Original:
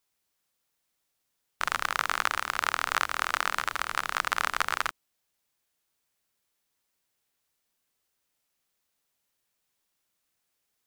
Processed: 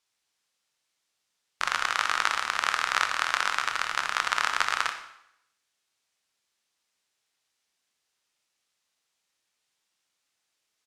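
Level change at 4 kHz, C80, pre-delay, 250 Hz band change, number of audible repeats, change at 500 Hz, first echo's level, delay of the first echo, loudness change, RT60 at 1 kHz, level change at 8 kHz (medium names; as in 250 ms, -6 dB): +4.0 dB, 11.5 dB, 6 ms, -3.0 dB, 1, -1.0 dB, -13.5 dB, 61 ms, +2.5 dB, 0.80 s, +2.0 dB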